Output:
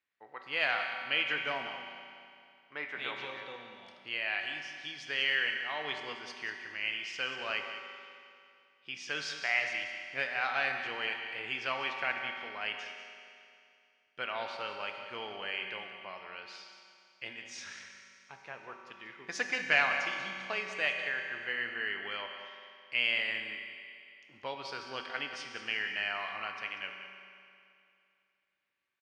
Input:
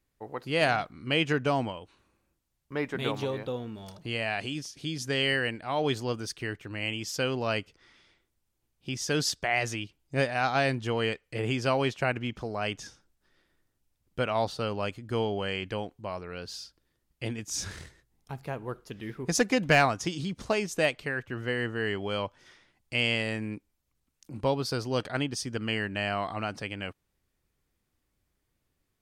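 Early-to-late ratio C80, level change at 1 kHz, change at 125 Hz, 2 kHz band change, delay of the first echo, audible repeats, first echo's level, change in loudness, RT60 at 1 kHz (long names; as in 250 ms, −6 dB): 4.5 dB, −6.5 dB, −25.0 dB, 0.0 dB, 190 ms, 1, −11.5 dB, −4.0 dB, 2.5 s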